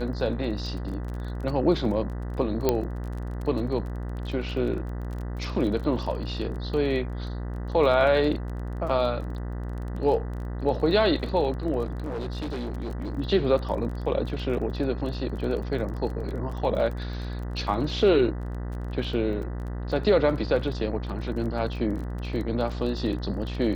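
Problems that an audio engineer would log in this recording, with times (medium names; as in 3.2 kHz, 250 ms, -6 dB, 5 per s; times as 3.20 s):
buzz 60 Hz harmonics 33 -32 dBFS
crackle 22 per s -34 dBFS
2.69 s: pop -8 dBFS
11.85–13.16 s: clipped -28 dBFS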